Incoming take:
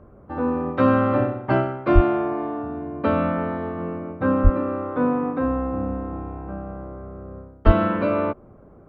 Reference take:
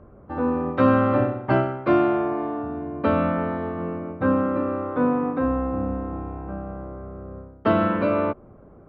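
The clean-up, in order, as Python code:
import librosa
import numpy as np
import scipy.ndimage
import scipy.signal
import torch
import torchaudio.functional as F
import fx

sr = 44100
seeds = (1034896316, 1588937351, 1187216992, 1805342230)

y = fx.highpass(x, sr, hz=140.0, slope=24, at=(1.94, 2.06), fade=0.02)
y = fx.highpass(y, sr, hz=140.0, slope=24, at=(4.43, 4.55), fade=0.02)
y = fx.highpass(y, sr, hz=140.0, slope=24, at=(7.65, 7.77), fade=0.02)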